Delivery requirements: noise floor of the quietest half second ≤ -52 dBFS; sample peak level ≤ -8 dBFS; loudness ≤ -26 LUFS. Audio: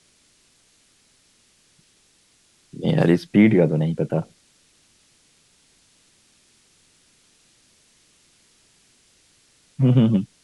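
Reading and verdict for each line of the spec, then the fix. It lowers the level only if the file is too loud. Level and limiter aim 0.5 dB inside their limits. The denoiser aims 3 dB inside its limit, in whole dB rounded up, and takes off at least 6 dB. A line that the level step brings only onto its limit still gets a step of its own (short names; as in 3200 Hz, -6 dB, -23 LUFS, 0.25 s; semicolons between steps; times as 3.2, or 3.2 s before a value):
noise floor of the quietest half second -60 dBFS: OK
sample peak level -5.0 dBFS: fail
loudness -19.5 LUFS: fail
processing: gain -7 dB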